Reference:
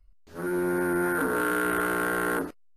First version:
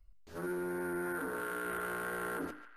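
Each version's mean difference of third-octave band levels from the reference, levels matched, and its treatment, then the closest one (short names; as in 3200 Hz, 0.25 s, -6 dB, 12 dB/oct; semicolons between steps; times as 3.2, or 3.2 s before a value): 2.0 dB: notches 50/100/150/200/250/300 Hz; limiter -28.5 dBFS, peak gain reduction 11 dB; narrowing echo 0.142 s, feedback 65%, band-pass 2200 Hz, level -10 dB; gain -2 dB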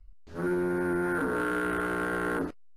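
3.0 dB: low shelf 190 Hz +6.5 dB; limiter -21 dBFS, peak gain reduction 4.5 dB; air absorption 52 m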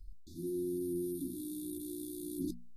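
16.5 dB: notches 60/120/180/240 Hz; reverse; compressor 6:1, threshold -43 dBFS, peak gain reduction 18 dB; reverse; brick-wall FIR band-stop 380–3400 Hz; gain +9 dB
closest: first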